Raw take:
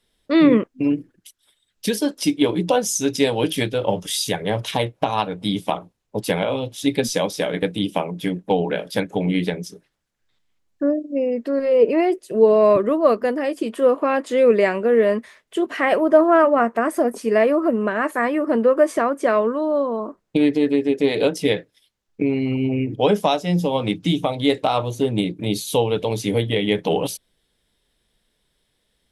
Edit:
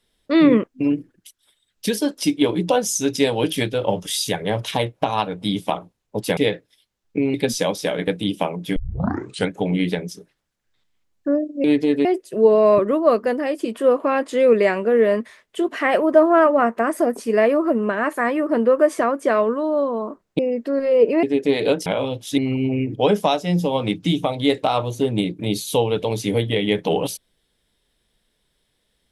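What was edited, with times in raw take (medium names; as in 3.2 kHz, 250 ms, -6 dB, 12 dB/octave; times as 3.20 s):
6.37–6.89 s: swap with 21.41–22.38 s
8.31 s: tape start 0.73 s
11.19–12.03 s: swap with 20.37–20.78 s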